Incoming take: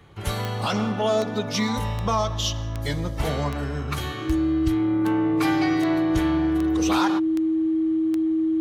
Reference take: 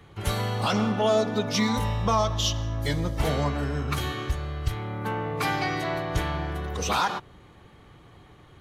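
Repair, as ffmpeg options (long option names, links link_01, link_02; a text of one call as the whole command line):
ffmpeg -i in.wav -af "adeclick=threshold=4,bandreject=frequency=320:width=30" out.wav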